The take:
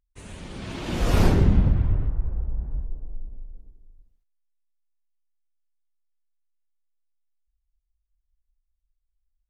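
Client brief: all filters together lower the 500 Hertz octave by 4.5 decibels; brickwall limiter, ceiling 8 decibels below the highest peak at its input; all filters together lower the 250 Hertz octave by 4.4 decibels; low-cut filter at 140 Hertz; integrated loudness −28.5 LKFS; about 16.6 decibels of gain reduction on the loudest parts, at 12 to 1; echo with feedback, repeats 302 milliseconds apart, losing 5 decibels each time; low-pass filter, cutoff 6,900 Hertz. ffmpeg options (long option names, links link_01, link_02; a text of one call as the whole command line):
ffmpeg -i in.wav -af "highpass=140,lowpass=6900,equalizer=frequency=250:width_type=o:gain=-4,equalizer=frequency=500:width_type=o:gain=-4.5,acompressor=threshold=-38dB:ratio=12,alimiter=level_in=13.5dB:limit=-24dB:level=0:latency=1,volume=-13.5dB,aecho=1:1:302|604|906|1208|1510|1812|2114:0.562|0.315|0.176|0.0988|0.0553|0.031|0.0173,volume=17.5dB" out.wav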